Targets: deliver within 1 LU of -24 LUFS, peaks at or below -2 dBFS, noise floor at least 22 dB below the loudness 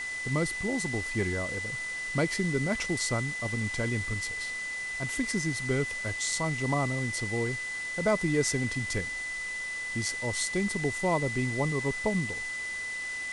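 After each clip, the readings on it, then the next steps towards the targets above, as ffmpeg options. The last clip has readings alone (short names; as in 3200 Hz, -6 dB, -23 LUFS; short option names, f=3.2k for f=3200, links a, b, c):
steady tone 2000 Hz; tone level -33 dBFS; noise floor -36 dBFS; noise floor target -52 dBFS; loudness -30.0 LUFS; peak -14.0 dBFS; loudness target -24.0 LUFS
-> -af "bandreject=f=2k:w=30"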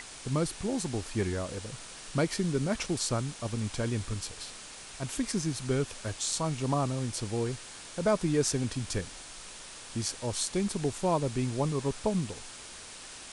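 steady tone none; noise floor -46 dBFS; noise floor target -54 dBFS
-> -af "afftdn=nr=8:nf=-46"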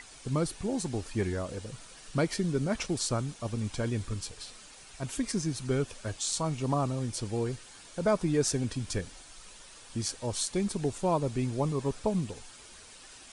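noise floor -51 dBFS; noise floor target -54 dBFS
-> -af "afftdn=nr=6:nf=-51"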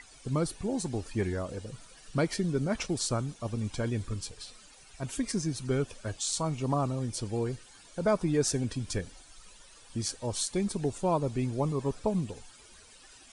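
noise floor -55 dBFS; loudness -32.0 LUFS; peak -13.5 dBFS; loudness target -24.0 LUFS
-> -af "volume=8dB"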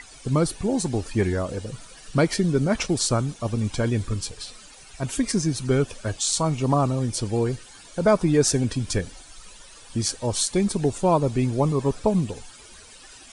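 loudness -24.0 LUFS; peak -5.5 dBFS; noise floor -47 dBFS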